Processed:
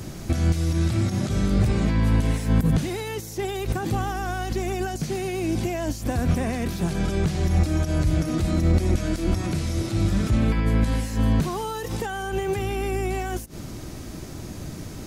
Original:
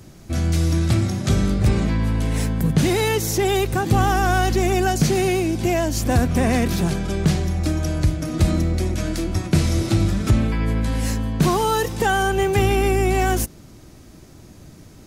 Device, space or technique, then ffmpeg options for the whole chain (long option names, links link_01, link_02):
de-esser from a sidechain: -filter_complex "[0:a]asplit=2[link_01][link_02];[link_02]highpass=frequency=4200:poles=1,apad=whole_len=664401[link_03];[link_01][link_03]sidechaincompress=threshold=-46dB:ratio=12:attack=2:release=66,volume=8.5dB"